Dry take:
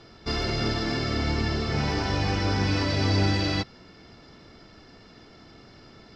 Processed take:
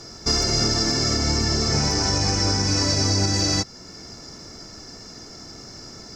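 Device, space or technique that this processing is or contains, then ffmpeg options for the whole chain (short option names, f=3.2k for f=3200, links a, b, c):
over-bright horn tweeter: -af "highshelf=f=4.6k:t=q:w=3:g=12,alimiter=limit=-18dB:level=0:latency=1:release=354,volume=7dB"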